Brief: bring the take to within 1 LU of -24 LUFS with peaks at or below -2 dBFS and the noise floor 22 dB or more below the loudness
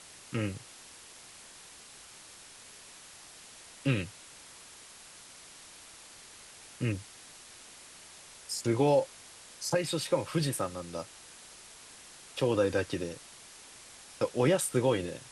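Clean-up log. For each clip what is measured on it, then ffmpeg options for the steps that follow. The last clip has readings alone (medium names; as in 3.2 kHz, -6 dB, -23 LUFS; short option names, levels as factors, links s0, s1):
noise floor -52 dBFS; noise floor target -54 dBFS; loudness -31.5 LUFS; peak level -14.0 dBFS; loudness target -24.0 LUFS
-> -af "afftdn=nr=6:nf=-52"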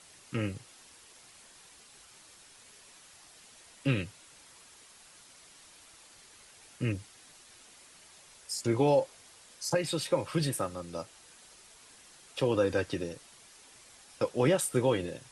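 noise floor -56 dBFS; loudness -31.5 LUFS; peak level -14.5 dBFS; loudness target -24.0 LUFS
-> -af "volume=2.37"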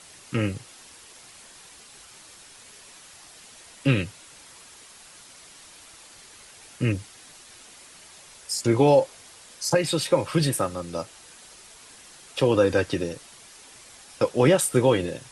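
loudness -24.0 LUFS; peak level -7.0 dBFS; noise floor -49 dBFS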